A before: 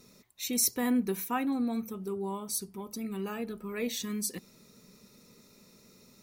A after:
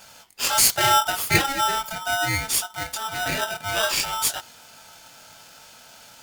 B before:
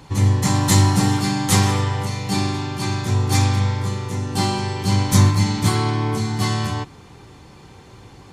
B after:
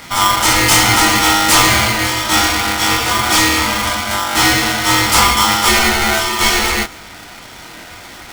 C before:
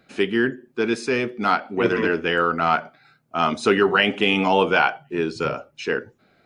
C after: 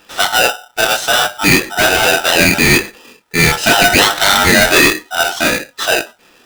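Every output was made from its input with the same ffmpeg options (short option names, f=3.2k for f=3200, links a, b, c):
-filter_complex "[0:a]flanger=delay=20:depth=5.6:speed=0.71,asplit=2[a][b];[b]highpass=f=720:p=1,volume=20dB,asoftclip=type=tanh:threshold=-4dB[c];[a][c]amix=inputs=2:normalize=0,lowpass=f=6.4k:p=1,volume=-6dB,aeval=exprs='val(0)*sgn(sin(2*PI*1100*n/s))':c=same,volume=4dB"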